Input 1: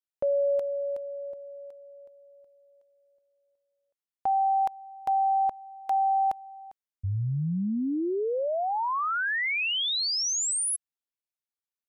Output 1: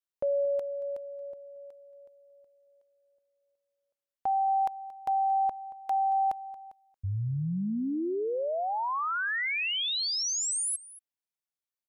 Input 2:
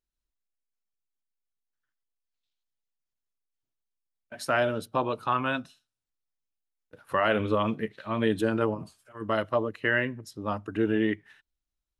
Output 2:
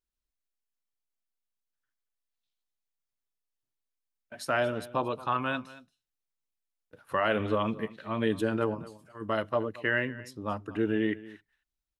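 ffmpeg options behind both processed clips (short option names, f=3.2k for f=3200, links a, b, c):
-af "aecho=1:1:228:0.119,volume=-2.5dB"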